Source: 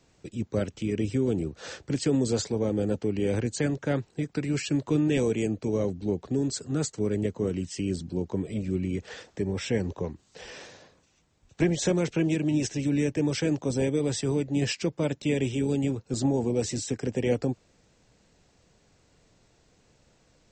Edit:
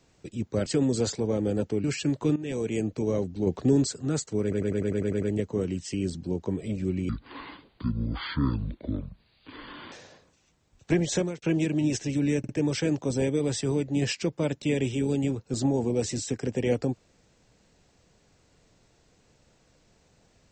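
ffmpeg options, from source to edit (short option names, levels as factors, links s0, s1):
-filter_complex "[0:a]asplit=19[s0][s1][s2][s3][s4][s5][s6][s7][s8][s9][s10][s11][s12][s13][s14][s15][s16][s17][s18];[s0]atrim=end=0.662[s19];[s1]atrim=start=1.978:end=3.162[s20];[s2]atrim=start=4.498:end=5.02,asetpts=PTS-STARTPTS,afade=t=out:st=0.518:d=0.004:c=hsin:silence=0.16788[s21];[s3]atrim=start=5.02:end=6.132,asetpts=PTS-STARTPTS,afade=t=in:d=0.47:silence=0.16788[s22];[s4]atrim=start=6.128:end=6.532,asetpts=PTS-STARTPTS,volume=1.88[s23];[s5]atrim=start=6.528:end=7.182[s24];[s6]atrim=start=7.078:end=7.182[s25];[s7]atrim=start=7.078:end=7.182[s26];[s8]atrim=start=7.078:end=7.182[s27];[s9]atrim=start=7.078:end=7.182[s28];[s10]atrim=start=7.078:end=7.182[s29];[s11]atrim=start=7.078:end=7.182[s30];[s12]atrim=start=7.078:end=7.182[s31];[s13]atrim=start=7.078:end=8.954[s32];[s14]atrim=start=8.95:end=10.62,asetpts=PTS-STARTPTS,asetrate=26019,aresample=44100,atrim=end_sample=124825,asetpts=PTS-STARTPTS[s33];[s15]atrim=start=10.616:end=12.12,asetpts=PTS-STARTPTS,afade=t=out:st=1.234:d=0.27[s34];[s16]atrim=start=12.12:end=13.142,asetpts=PTS-STARTPTS,afade=t=in:d=0.004:c=hsin[s35];[s17]atrim=start=13.088:end=13.142[s36];[s18]atrim=start=13.088[s37];[s19][s20]acrossfade=d=0.004:c1=hsin:c2=hsin[s38];[s21][s22]concat=n=2:v=0:a=1[s39];[s38][s39]acrossfade=d=0.004:c1=hsin:c2=hsin[s40];[s40][s23]acrossfade=d=0.004:c1=hsin:c2=hsin[s41];[s41][s24]acrossfade=d=0.004:c1=hsin:c2=hsin[s42];[s42][s25]acrossfade=d=0.004:c1=hsin:c2=hsin[s43];[s43][s26]acrossfade=d=0.004:c1=hsin:c2=hsin[s44];[s44][s27]acrossfade=d=0.004:c1=hsin:c2=hsin[s45];[s45][s28]acrossfade=d=0.004:c1=hsin:c2=hsin[s46];[s46][s29]acrossfade=d=0.004:c1=hsin:c2=hsin[s47];[s47][s30]acrossfade=d=0.004:c1=hsin:c2=hsin[s48];[s48][s31]acrossfade=d=0.004:c1=hsin:c2=hsin[s49];[s49][s32]acrossfade=d=0.004:c1=hsin:c2=hsin[s50];[s50][s33]acrossfade=d=0.004:c1=hsin:c2=hsin[s51];[s34][s35]concat=n=2:v=0:a=1[s52];[s51][s52]acrossfade=d=0.004:c1=hsin:c2=hsin[s53];[s53][s36]acrossfade=d=0.004:c1=hsin:c2=hsin[s54];[s54][s37]acrossfade=d=0.004:c1=hsin:c2=hsin"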